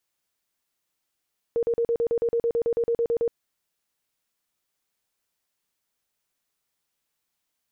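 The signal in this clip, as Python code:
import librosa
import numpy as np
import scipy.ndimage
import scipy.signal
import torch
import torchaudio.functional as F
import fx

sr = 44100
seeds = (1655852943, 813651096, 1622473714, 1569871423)

y = fx.tone_burst(sr, hz=467.0, cycles=32, every_s=0.11, bursts=16, level_db=-20.0)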